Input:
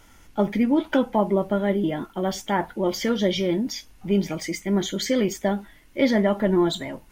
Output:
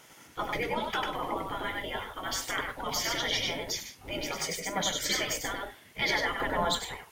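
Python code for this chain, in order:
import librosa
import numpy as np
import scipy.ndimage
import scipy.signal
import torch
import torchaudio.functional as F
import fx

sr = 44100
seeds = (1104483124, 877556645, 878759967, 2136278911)

y = fx.low_shelf_res(x, sr, hz=270.0, db=-6.5, q=3.0, at=(4.22, 4.85))
y = fx.echo_multitap(y, sr, ms=(98, 143), db=(-4.0, -16.5))
y = fx.spec_gate(y, sr, threshold_db=-15, keep='weak')
y = y * 10.0 ** (2.0 / 20.0)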